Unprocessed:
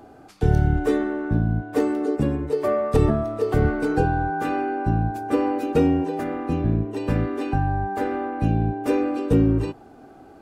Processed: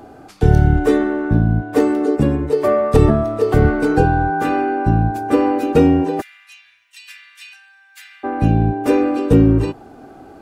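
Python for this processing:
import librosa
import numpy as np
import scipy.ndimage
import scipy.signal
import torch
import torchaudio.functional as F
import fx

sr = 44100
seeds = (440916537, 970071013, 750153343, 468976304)

y = fx.cheby2_highpass(x, sr, hz=520.0, order=4, stop_db=70, at=(6.2, 8.23), fade=0.02)
y = F.gain(torch.from_numpy(y), 6.5).numpy()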